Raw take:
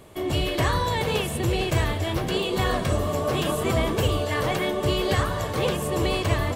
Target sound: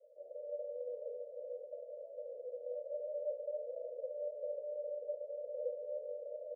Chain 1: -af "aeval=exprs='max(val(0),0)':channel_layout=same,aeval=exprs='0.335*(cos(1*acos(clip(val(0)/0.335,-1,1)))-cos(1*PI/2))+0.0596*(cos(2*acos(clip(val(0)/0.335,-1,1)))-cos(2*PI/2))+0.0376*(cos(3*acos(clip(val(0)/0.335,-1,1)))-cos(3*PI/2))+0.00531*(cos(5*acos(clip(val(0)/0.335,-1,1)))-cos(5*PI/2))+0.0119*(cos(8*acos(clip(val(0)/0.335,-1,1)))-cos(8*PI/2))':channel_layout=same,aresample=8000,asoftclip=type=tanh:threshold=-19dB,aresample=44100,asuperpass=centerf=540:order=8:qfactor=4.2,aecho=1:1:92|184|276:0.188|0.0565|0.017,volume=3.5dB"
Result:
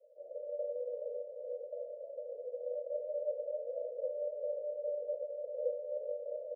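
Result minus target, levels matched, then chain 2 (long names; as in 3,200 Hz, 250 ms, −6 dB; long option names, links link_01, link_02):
echo 68 ms early; soft clipping: distortion −6 dB
-af "aeval=exprs='max(val(0),0)':channel_layout=same,aeval=exprs='0.335*(cos(1*acos(clip(val(0)/0.335,-1,1)))-cos(1*PI/2))+0.0596*(cos(2*acos(clip(val(0)/0.335,-1,1)))-cos(2*PI/2))+0.0376*(cos(3*acos(clip(val(0)/0.335,-1,1)))-cos(3*PI/2))+0.00531*(cos(5*acos(clip(val(0)/0.335,-1,1)))-cos(5*PI/2))+0.0119*(cos(8*acos(clip(val(0)/0.335,-1,1)))-cos(8*PI/2))':channel_layout=same,aresample=8000,asoftclip=type=tanh:threshold=-27dB,aresample=44100,asuperpass=centerf=540:order=8:qfactor=4.2,aecho=1:1:160|320|480:0.188|0.0565|0.017,volume=3.5dB"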